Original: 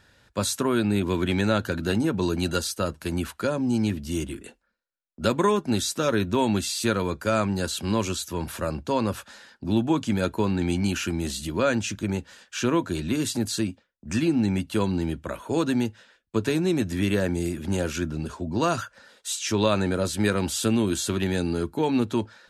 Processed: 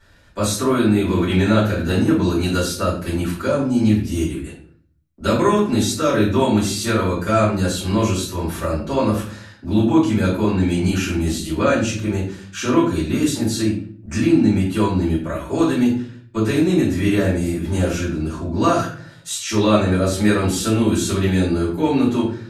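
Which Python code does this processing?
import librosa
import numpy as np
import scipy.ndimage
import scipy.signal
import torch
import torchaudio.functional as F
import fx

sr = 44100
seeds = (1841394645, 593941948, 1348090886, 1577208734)

y = fx.room_shoebox(x, sr, seeds[0], volume_m3=53.0, walls='mixed', distance_m=2.7)
y = y * librosa.db_to_amplitude(-7.0)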